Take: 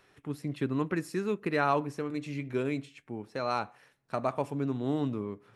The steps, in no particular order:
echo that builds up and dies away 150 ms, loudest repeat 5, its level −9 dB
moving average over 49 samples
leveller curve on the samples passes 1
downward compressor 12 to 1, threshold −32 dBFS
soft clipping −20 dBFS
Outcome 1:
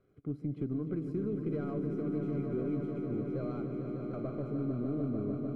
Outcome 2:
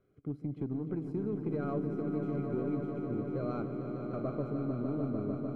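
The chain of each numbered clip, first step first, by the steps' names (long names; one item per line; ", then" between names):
soft clipping, then downward compressor, then echo that builds up and dies away, then leveller curve on the samples, then moving average
leveller curve on the samples, then moving average, then soft clipping, then downward compressor, then echo that builds up and dies away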